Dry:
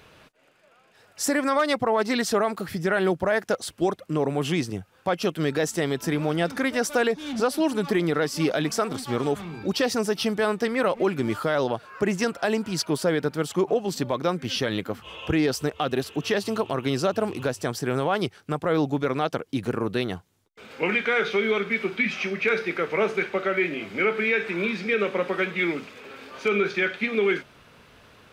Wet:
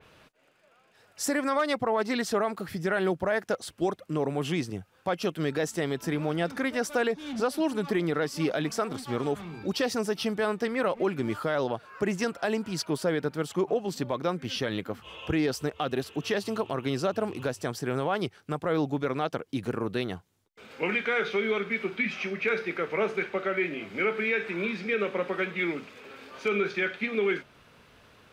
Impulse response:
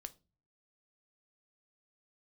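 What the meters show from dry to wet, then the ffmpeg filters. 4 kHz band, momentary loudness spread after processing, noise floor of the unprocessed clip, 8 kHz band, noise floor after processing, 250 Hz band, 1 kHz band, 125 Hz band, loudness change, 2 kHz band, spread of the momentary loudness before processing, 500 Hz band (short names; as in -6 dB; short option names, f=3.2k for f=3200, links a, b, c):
-5.0 dB, 6 LU, -59 dBFS, -5.5 dB, -63 dBFS, -4.0 dB, -4.0 dB, -4.0 dB, -4.0 dB, -4.0 dB, 6 LU, -4.0 dB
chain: -af "adynamicequalizer=threshold=0.01:dfrequency=3500:dqfactor=0.7:tfrequency=3500:tqfactor=0.7:attack=5:release=100:ratio=0.375:range=1.5:mode=cutabove:tftype=highshelf,volume=-4dB"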